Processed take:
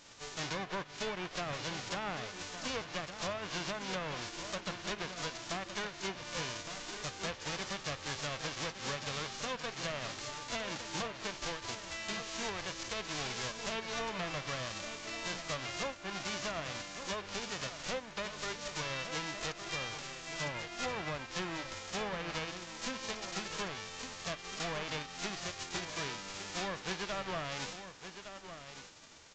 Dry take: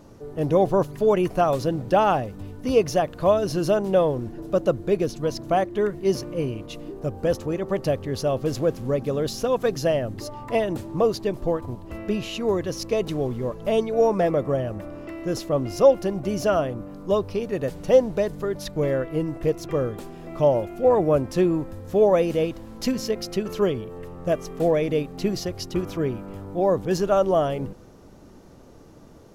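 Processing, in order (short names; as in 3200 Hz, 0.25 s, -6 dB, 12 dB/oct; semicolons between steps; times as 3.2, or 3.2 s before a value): spectral whitening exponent 0.1; treble ducked by the level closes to 2300 Hz, closed at -15.5 dBFS; compressor 20:1, threshold -27 dBFS, peak gain reduction 17 dB; echo 1.161 s -11 dB; overloaded stage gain 25 dB; gain -6 dB; AAC 32 kbps 16000 Hz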